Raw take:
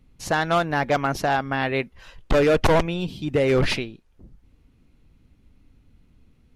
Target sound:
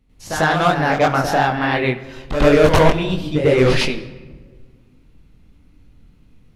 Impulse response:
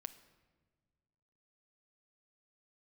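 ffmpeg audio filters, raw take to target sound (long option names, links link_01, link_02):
-filter_complex "[0:a]flanger=delay=20:depth=6.3:speed=2.9,asplit=2[link_01][link_02];[1:a]atrim=start_sample=2205,adelay=96[link_03];[link_02][link_03]afir=irnorm=-1:irlink=0,volume=12.5dB[link_04];[link_01][link_04]amix=inputs=2:normalize=0"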